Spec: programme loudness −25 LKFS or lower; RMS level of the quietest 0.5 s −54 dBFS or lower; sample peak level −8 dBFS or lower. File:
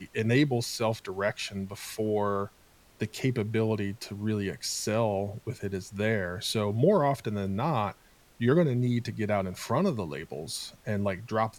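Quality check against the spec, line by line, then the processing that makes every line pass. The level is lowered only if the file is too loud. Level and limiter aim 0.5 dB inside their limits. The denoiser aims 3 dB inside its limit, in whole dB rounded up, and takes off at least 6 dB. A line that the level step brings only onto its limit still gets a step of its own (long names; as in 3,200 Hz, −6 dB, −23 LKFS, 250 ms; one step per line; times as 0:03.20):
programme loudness −29.5 LKFS: in spec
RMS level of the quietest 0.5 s −59 dBFS: in spec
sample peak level −11.5 dBFS: in spec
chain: no processing needed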